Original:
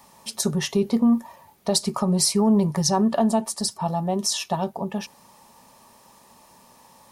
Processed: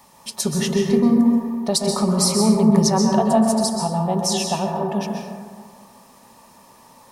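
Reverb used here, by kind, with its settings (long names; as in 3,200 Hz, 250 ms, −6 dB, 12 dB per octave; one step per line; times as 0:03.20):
dense smooth reverb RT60 1.8 s, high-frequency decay 0.3×, pre-delay 115 ms, DRR 0.5 dB
level +1 dB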